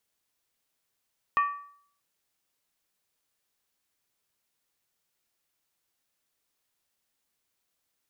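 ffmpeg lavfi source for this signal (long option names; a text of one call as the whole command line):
ffmpeg -f lavfi -i "aevalsrc='0.119*pow(10,-3*t/0.59)*sin(2*PI*1150*t)+0.0447*pow(10,-3*t/0.467)*sin(2*PI*1833.1*t)+0.0168*pow(10,-3*t/0.404)*sin(2*PI*2456.4*t)+0.00631*pow(10,-3*t/0.389)*sin(2*PI*2640.4*t)+0.00237*pow(10,-3*t/0.362)*sin(2*PI*3050.9*t)':duration=0.63:sample_rate=44100" out.wav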